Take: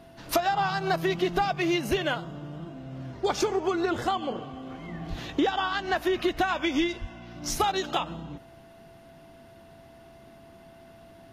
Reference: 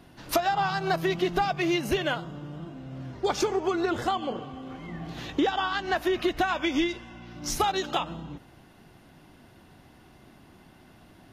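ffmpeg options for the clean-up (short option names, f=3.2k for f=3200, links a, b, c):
-filter_complex "[0:a]bandreject=f=670:w=30,asplit=3[a][b][c];[a]afade=t=out:st=5.09:d=0.02[d];[b]highpass=f=140:w=0.5412,highpass=f=140:w=1.3066,afade=t=in:st=5.09:d=0.02,afade=t=out:st=5.21:d=0.02[e];[c]afade=t=in:st=5.21:d=0.02[f];[d][e][f]amix=inputs=3:normalize=0,asplit=3[g][h][i];[g]afade=t=out:st=7:d=0.02[j];[h]highpass=f=140:w=0.5412,highpass=f=140:w=1.3066,afade=t=in:st=7:d=0.02,afade=t=out:st=7.12:d=0.02[k];[i]afade=t=in:st=7.12:d=0.02[l];[j][k][l]amix=inputs=3:normalize=0"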